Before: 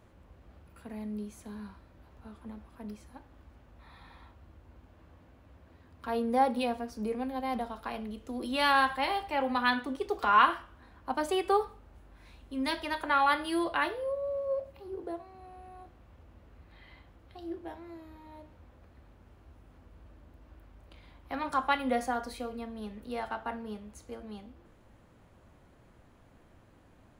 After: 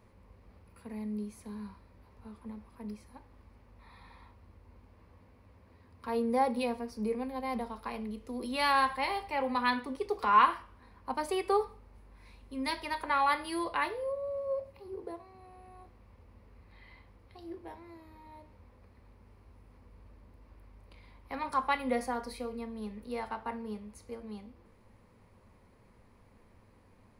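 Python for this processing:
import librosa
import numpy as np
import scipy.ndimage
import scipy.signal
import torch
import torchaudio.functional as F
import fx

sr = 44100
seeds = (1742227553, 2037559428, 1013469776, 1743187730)

y = fx.ripple_eq(x, sr, per_octave=0.89, db=7)
y = y * librosa.db_to_amplitude(-2.5)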